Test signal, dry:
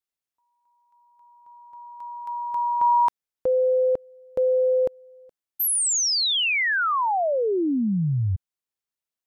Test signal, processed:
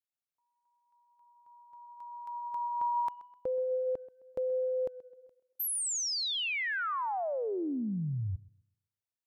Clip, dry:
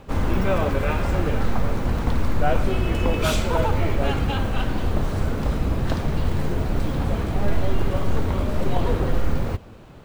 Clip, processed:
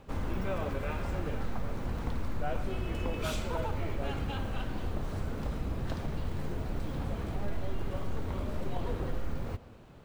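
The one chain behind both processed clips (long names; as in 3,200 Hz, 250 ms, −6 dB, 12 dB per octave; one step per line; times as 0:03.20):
downward compressor 1.5 to 1, threshold −25 dBFS
tape delay 129 ms, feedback 41%, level −17 dB, low-pass 4,100 Hz
level −9 dB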